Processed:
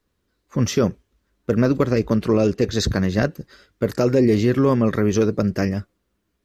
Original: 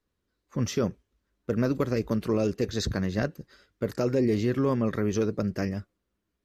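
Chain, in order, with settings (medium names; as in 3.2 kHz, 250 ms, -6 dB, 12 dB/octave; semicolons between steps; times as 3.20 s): 1.60–2.72 s: treble shelf 10 kHz -10 dB; trim +8 dB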